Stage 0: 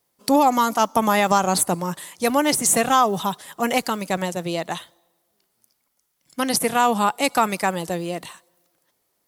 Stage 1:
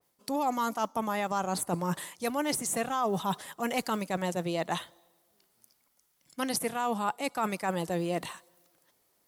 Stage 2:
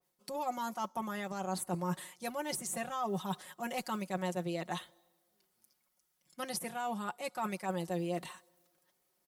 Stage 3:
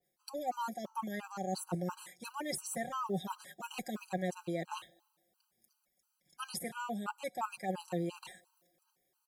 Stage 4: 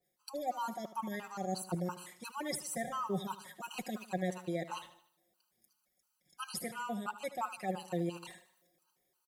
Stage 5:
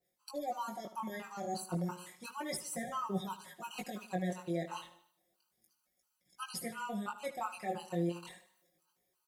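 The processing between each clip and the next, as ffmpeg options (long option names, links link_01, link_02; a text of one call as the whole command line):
ffmpeg -i in.wav -af "areverse,acompressor=threshold=-26dB:ratio=10,areverse,adynamicequalizer=threshold=0.00708:dfrequency=2400:dqfactor=0.7:tfrequency=2400:tqfactor=0.7:attack=5:release=100:ratio=0.375:range=2:mode=cutabove:tftype=highshelf" out.wav
ffmpeg -i in.wav -af "aecho=1:1:5.5:0.73,volume=-8.5dB" out.wav
ffmpeg -i in.wav -af "afftfilt=real='re*gt(sin(2*PI*2.9*pts/sr)*(1-2*mod(floor(b*sr/1024/800),2)),0)':imag='im*gt(sin(2*PI*2.9*pts/sr)*(1-2*mod(floor(b*sr/1024/800),2)),0)':win_size=1024:overlap=0.75,volume=1dB" out.wav
ffmpeg -i in.wav -af "aecho=1:1:76|152|228|304:0.2|0.0918|0.0422|0.0194" out.wav
ffmpeg -i in.wav -af "flanger=delay=16:depth=7.9:speed=0.32,volume=2dB" out.wav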